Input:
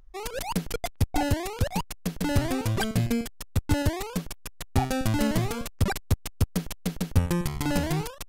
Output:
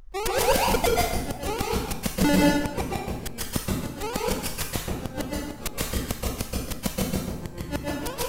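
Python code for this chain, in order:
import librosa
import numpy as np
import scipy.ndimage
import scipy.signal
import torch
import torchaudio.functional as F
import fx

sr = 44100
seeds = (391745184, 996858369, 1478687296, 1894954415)

p1 = np.clip(x, -10.0 ** (-26.5 / 20.0), 10.0 ** (-26.5 / 20.0))
p2 = x + F.gain(torch.from_numpy(p1), -12.0).numpy()
p3 = fx.gate_flip(p2, sr, shuts_db=-16.0, range_db=-36)
p4 = fx.rev_plate(p3, sr, seeds[0], rt60_s=0.88, hf_ratio=0.85, predelay_ms=115, drr_db=-4.0)
y = F.gain(torch.from_numpy(p4), 4.5).numpy()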